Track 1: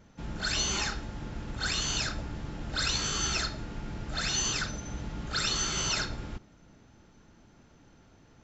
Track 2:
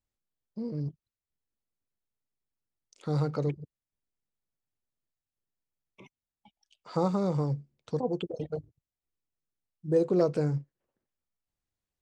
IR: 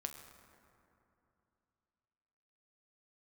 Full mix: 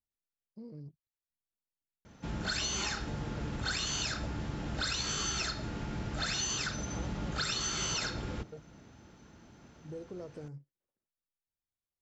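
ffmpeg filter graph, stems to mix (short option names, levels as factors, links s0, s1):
-filter_complex "[0:a]highpass=51,adelay=2050,volume=1.33[s0];[1:a]acompressor=threshold=0.0224:ratio=3,volume=0.299[s1];[s0][s1]amix=inputs=2:normalize=0,acompressor=threshold=0.0282:ratio=6"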